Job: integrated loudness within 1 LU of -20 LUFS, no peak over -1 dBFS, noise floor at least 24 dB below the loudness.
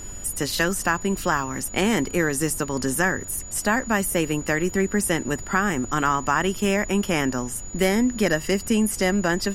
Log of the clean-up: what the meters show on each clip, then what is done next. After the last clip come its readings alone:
steady tone 6.9 kHz; tone level -37 dBFS; noise floor -36 dBFS; noise floor target -47 dBFS; loudness -23.0 LUFS; peak level -6.5 dBFS; loudness target -20.0 LUFS
-> band-stop 6.9 kHz, Q 30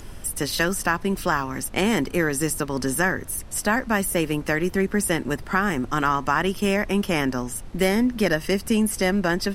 steady tone not found; noise floor -39 dBFS; noise floor target -48 dBFS
-> noise print and reduce 9 dB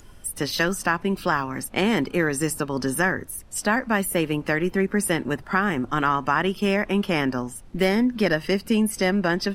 noise floor -46 dBFS; noise floor target -48 dBFS
-> noise print and reduce 6 dB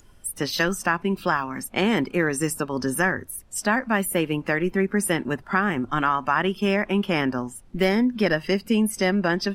noise floor -50 dBFS; loudness -23.5 LUFS; peak level -6.5 dBFS; loudness target -20.0 LUFS
-> trim +3.5 dB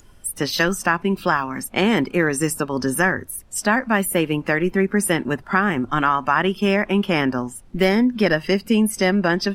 loudness -20.0 LUFS; peak level -3.0 dBFS; noise floor -46 dBFS

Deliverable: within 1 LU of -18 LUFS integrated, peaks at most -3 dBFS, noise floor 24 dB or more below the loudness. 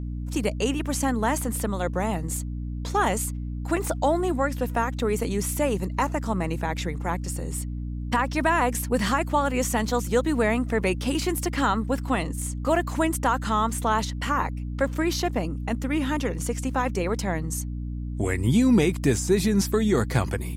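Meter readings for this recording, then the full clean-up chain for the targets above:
hum 60 Hz; highest harmonic 300 Hz; hum level -29 dBFS; loudness -25.5 LUFS; peak level -7.0 dBFS; loudness target -18.0 LUFS
-> de-hum 60 Hz, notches 5; trim +7.5 dB; peak limiter -3 dBFS

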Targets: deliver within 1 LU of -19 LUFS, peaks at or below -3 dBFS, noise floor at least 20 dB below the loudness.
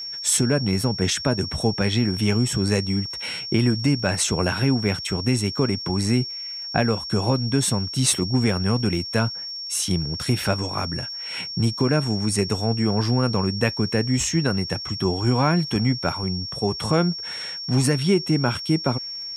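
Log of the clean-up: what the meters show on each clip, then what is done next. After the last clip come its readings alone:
tick rate 25 per s; steady tone 5.5 kHz; tone level -30 dBFS; loudness -22.5 LUFS; peak level -5.5 dBFS; loudness target -19.0 LUFS
-> de-click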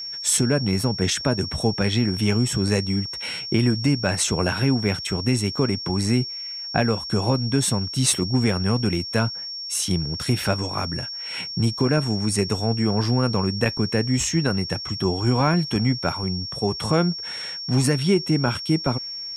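tick rate 0.10 per s; steady tone 5.5 kHz; tone level -30 dBFS
-> band-stop 5.5 kHz, Q 30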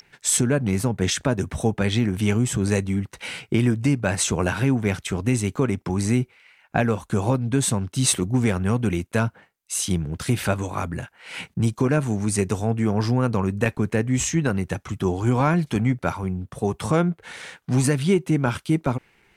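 steady tone not found; loudness -23.0 LUFS; peak level -6.0 dBFS; loudness target -19.0 LUFS
-> trim +4 dB; peak limiter -3 dBFS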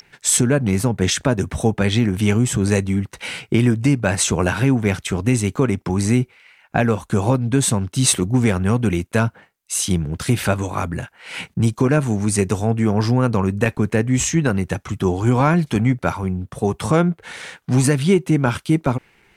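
loudness -19.0 LUFS; peak level -3.0 dBFS; noise floor -58 dBFS

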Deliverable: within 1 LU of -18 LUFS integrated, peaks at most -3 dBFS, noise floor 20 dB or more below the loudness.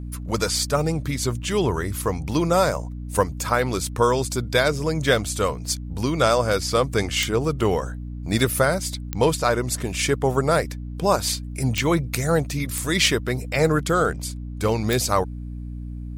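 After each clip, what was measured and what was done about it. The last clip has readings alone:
clicks found 5; hum 60 Hz; highest harmonic 300 Hz; hum level -30 dBFS; loudness -22.5 LUFS; peak level -4.5 dBFS; loudness target -18.0 LUFS
-> de-click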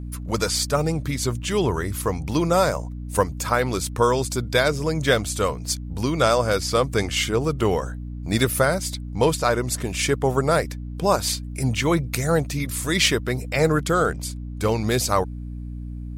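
clicks found 0; hum 60 Hz; highest harmonic 300 Hz; hum level -30 dBFS
-> de-hum 60 Hz, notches 5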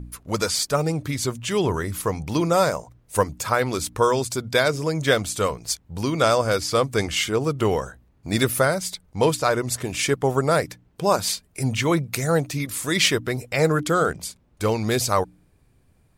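hum not found; loudness -23.0 LUFS; peak level -5.0 dBFS; loudness target -18.0 LUFS
-> trim +5 dB; peak limiter -3 dBFS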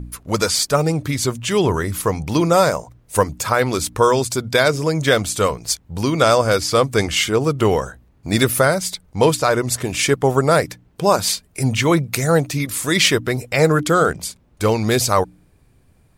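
loudness -18.0 LUFS; peak level -3.0 dBFS; noise floor -55 dBFS

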